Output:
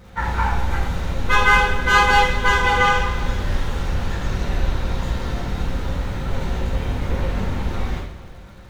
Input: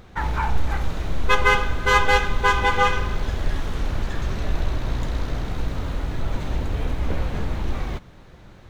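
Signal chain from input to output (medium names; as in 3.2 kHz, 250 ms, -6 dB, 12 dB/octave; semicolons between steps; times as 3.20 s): two-slope reverb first 0.63 s, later 2.7 s, DRR -8.5 dB; crackle 430 per s -43 dBFS; trim -5.5 dB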